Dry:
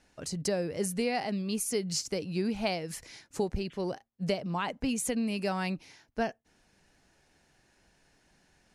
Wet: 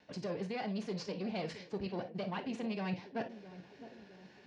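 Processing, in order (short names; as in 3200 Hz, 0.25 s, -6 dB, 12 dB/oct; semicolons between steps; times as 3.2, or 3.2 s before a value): half-wave gain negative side -7 dB; time stretch by phase-locked vocoder 0.51×; in parallel at +0.5 dB: overloaded stage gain 34.5 dB; on the sum: HPF 110 Hz 12 dB/oct; reverse; compressor 6:1, threshold -42 dBFS, peak gain reduction 15.5 dB; reverse; LPF 4600 Hz 24 dB/oct; notch 1300 Hz, Q 10; narrowing echo 0.661 s, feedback 61%, band-pass 340 Hz, level -12.5 dB; non-linear reverb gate 80 ms flat, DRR 6.5 dB; vibrato 1.9 Hz 36 cents; gain +4.5 dB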